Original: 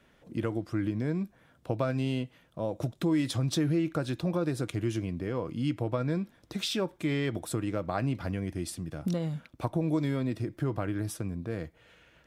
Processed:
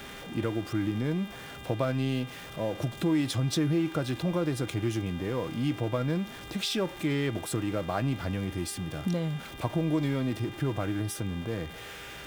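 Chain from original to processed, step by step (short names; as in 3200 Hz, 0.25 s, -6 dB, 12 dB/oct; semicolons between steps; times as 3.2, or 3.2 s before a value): zero-crossing step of -40 dBFS; buzz 400 Hz, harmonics 9, -48 dBFS 0 dB/oct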